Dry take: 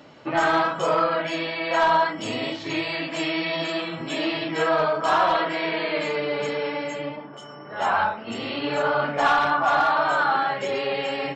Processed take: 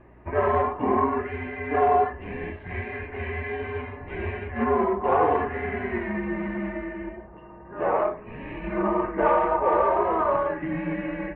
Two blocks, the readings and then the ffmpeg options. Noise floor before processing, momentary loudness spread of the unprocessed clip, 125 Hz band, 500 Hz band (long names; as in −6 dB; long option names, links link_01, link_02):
−41 dBFS, 9 LU, +3.5 dB, 0.0 dB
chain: -af "aeval=exprs='0.376*(cos(1*acos(clip(val(0)/0.376,-1,1)))-cos(1*PI/2))+0.015*(cos(7*acos(clip(val(0)/0.376,-1,1)))-cos(7*PI/2))':channel_layout=same,bandreject=frequency=1600:width=6.5,highpass=frequency=330:width_type=q:width=0.5412,highpass=frequency=330:width_type=q:width=1.307,lowpass=frequency=2300:width_type=q:width=0.5176,lowpass=frequency=2300:width_type=q:width=0.7071,lowpass=frequency=2300:width_type=q:width=1.932,afreqshift=-240,aeval=exprs='val(0)+0.00224*(sin(2*PI*60*n/s)+sin(2*PI*2*60*n/s)/2+sin(2*PI*3*60*n/s)/3+sin(2*PI*4*60*n/s)/4+sin(2*PI*5*60*n/s)/5)':channel_layout=same"